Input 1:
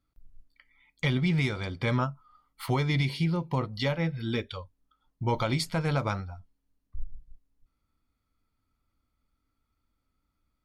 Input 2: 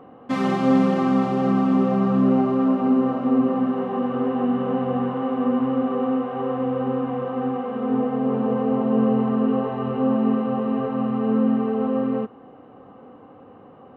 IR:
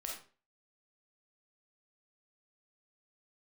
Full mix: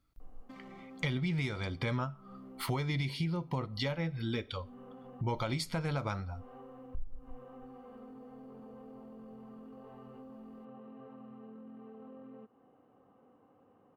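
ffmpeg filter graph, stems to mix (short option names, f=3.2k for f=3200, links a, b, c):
-filter_complex "[0:a]volume=2dB,asplit=3[a][b][c];[b]volume=-19dB[d];[1:a]alimiter=limit=-18dB:level=0:latency=1:release=12,acompressor=threshold=-29dB:ratio=6,adelay=200,volume=-19dB[e];[c]apad=whole_len=624856[f];[e][f]sidechaincompress=threshold=-39dB:ratio=6:attack=7:release=208[g];[2:a]atrim=start_sample=2205[h];[d][h]afir=irnorm=-1:irlink=0[i];[a][g][i]amix=inputs=3:normalize=0,acompressor=threshold=-35dB:ratio=2.5"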